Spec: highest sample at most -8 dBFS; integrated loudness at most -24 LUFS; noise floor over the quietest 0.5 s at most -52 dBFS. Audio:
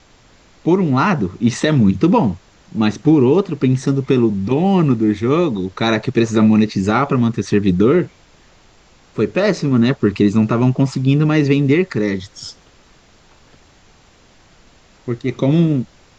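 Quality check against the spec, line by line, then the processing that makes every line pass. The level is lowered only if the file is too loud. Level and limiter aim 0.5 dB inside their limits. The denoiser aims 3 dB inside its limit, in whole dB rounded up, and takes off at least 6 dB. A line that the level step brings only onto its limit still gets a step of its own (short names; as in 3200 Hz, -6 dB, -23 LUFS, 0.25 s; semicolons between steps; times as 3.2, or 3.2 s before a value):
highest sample -3.5 dBFS: fail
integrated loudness -16.0 LUFS: fail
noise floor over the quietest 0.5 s -50 dBFS: fail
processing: gain -8.5 dB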